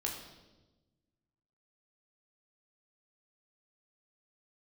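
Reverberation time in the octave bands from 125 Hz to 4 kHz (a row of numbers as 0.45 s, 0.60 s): 1.9 s, 1.7 s, 1.3 s, 0.95 s, 0.90 s, 1.0 s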